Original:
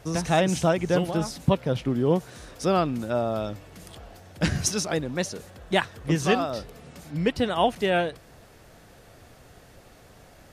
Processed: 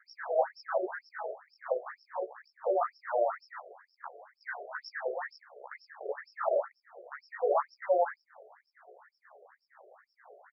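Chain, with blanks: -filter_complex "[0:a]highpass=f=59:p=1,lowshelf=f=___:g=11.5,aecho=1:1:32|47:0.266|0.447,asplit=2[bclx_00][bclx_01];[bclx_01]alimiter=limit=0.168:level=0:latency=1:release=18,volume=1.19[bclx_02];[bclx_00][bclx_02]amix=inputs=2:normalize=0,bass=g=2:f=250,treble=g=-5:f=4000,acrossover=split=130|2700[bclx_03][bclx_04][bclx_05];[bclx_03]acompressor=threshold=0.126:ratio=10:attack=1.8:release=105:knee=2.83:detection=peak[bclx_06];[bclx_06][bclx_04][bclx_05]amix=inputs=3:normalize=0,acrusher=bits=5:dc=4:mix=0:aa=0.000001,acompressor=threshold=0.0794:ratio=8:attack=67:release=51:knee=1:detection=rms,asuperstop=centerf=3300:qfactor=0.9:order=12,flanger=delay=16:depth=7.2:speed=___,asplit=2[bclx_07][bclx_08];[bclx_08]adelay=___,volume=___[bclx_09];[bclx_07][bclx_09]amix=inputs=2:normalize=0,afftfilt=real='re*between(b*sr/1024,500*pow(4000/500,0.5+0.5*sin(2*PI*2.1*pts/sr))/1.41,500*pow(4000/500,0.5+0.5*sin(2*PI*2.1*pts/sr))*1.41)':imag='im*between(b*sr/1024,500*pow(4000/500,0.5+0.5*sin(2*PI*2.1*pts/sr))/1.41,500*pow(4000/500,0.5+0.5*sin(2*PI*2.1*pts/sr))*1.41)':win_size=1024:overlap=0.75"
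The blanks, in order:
88, 0.89, 14, 0.708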